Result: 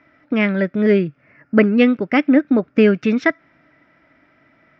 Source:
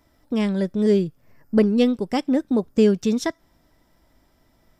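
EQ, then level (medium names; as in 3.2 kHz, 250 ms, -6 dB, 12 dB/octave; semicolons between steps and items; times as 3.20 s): distance through air 180 m; cabinet simulation 120–6400 Hz, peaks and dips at 140 Hz +6 dB, 290 Hz +8 dB, 620 Hz +7 dB, 1.3 kHz +4 dB, 2.2 kHz +5 dB; high-order bell 1.9 kHz +11.5 dB 1.3 oct; +2.0 dB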